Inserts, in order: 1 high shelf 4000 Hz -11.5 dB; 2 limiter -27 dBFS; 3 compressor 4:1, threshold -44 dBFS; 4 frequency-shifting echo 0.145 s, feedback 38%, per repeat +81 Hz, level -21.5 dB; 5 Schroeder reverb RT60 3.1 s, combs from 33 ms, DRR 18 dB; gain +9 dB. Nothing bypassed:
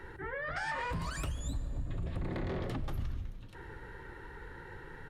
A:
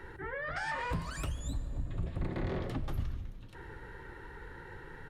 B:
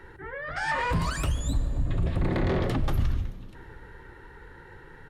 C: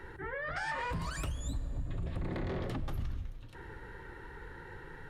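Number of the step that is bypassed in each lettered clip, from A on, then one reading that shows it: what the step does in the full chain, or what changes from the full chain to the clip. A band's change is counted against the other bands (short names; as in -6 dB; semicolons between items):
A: 2, crest factor change +2.0 dB; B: 3, mean gain reduction 5.5 dB; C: 4, echo-to-direct -16.0 dB to -18.0 dB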